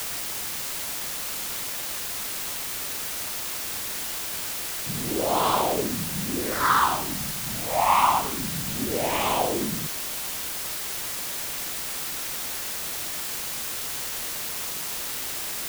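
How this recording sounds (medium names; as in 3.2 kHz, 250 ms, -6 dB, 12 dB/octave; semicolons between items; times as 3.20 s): phasing stages 6, 0.23 Hz, lowest notch 380–1800 Hz; a quantiser's noise floor 6-bit, dither triangular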